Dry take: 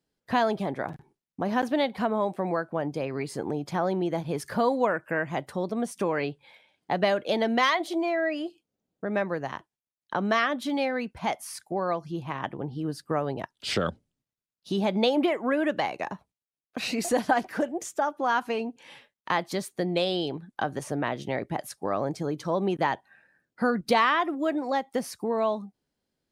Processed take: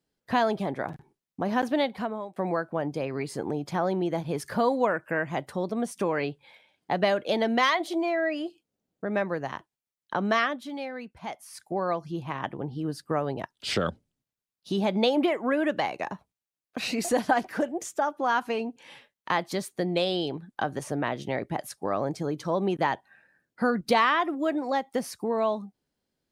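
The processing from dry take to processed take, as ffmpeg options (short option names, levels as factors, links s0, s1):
-filter_complex "[0:a]asplit=4[s0][s1][s2][s3];[s0]atrim=end=2.36,asetpts=PTS-STARTPTS,afade=t=out:st=1.81:d=0.55:silence=0.105925[s4];[s1]atrim=start=2.36:end=10.59,asetpts=PTS-STARTPTS,afade=t=in:d=0.004:c=hsin:silence=0.105925,afade=t=out:st=8.03:d=0.2:c=qsin:silence=0.398107[s5];[s2]atrim=start=10.59:end=11.51,asetpts=PTS-STARTPTS,volume=0.398[s6];[s3]atrim=start=11.51,asetpts=PTS-STARTPTS,afade=t=in:d=0.2:c=qsin:silence=0.398107[s7];[s4][s5][s6][s7]concat=n=4:v=0:a=1"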